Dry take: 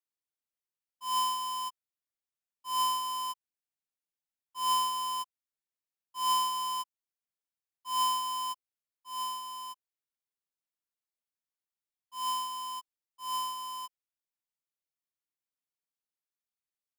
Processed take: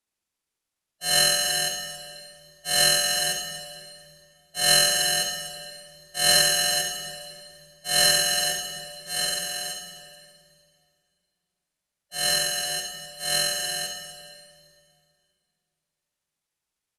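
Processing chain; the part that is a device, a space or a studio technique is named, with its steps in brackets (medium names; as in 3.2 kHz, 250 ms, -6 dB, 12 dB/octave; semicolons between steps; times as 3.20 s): monster voice (pitch shift -6 st; formant shift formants -3.5 st; bass shelf 140 Hz +5 dB; delay 70 ms -8.5 dB; reverberation RT60 2.3 s, pre-delay 12 ms, DRR 6 dB); trim +8.5 dB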